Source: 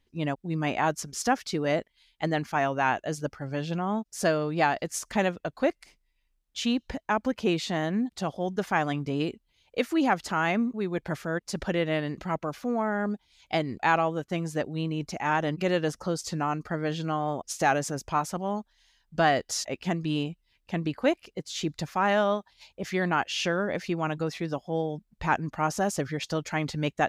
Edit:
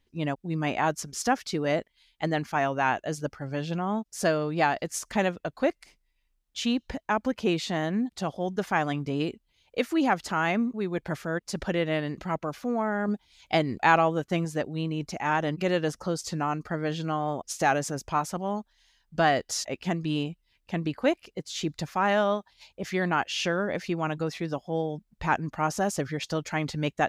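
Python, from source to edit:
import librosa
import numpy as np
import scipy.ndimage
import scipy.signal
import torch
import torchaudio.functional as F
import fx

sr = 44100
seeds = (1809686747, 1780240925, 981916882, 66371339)

y = fx.edit(x, sr, fx.clip_gain(start_s=13.08, length_s=1.37, db=3.0), tone=tone)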